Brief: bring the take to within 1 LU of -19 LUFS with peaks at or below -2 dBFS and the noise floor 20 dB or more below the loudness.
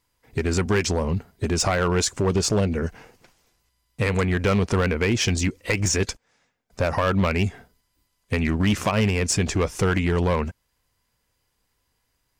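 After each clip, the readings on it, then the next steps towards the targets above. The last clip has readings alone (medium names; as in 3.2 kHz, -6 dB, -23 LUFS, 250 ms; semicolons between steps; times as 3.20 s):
clipped samples 1.6%; clipping level -15.0 dBFS; loudness -23.0 LUFS; peak level -15.0 dBFS; loudness target -19.0 LUFS
-> clip repair -15 dBFS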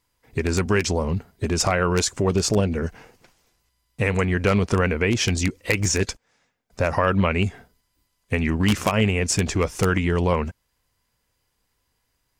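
clipped samples 0.0%; loudness -22.5 LUFS; peak level -6.0 dBFS; loudness target -19.0 LUFS
-> trim +3.5 dB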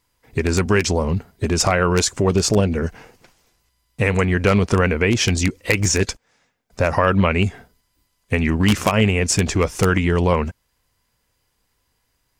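loudness -19.0 LUFS; peak level -2.5 dBFS; noise floor -70 dBFS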